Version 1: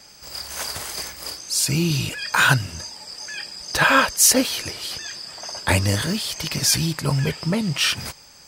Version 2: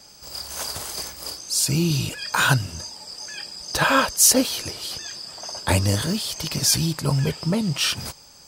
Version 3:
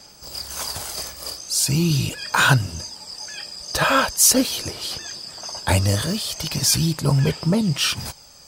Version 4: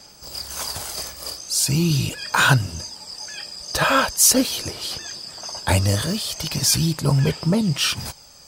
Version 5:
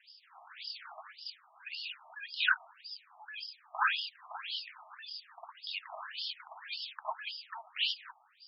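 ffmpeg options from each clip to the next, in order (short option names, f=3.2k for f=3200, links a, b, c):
-af "equalizer=f=2k:w=1.4:g=-6.5"
-filter_complex "[0:a]asplit=2[a][b];[b]asoftclip=type=hard:threshold=-16.5dB,volume=-12dB[c];[a][c]amix=inputs=2:normalize=0,aphaser=in_gain=1:out_gain=1:delay=1.7:decay=0.26:speed=0.41:type=sinusoidal,volume=-1dB"
-af anull
-filter_complex "[0:a]acrossover=split=3700[a][b];[b]acompressor=threshold=-35dB:ratio=4:attack=1:release=60[c];[a][c]amix=inputs=2:normalize=0,afftfilt=real='re*between(b*sr/1024,880*pow(4000/880,0.5+0.5*sin(2*PI*1.8*pts/sr))/1.41,880*pow(4000/880,0.5+0.5*sin(2*PI*1.8*pts/sr))*1.41)':imag='im*between(b*sr/1024,880*pow(4000/880,0.5+0.5*sin(2*PI*1.8*pts/sr))/1.41,880*pow(4000/880,0.5+0.5*sin(2*PI*1.8*pts/sr))*1.41)':win_size=1024:overlap=0.75,volume=-5dB"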